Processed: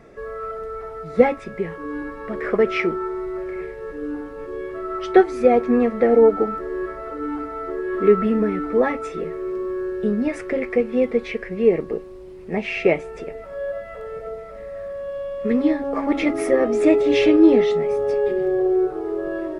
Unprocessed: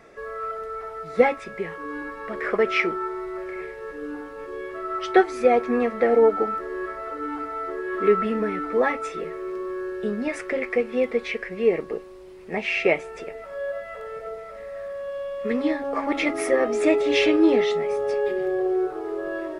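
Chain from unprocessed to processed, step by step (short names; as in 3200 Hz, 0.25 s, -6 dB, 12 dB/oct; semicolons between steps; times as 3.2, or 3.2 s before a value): low shelf 450 Hz +12 dB; gain -2.5 dB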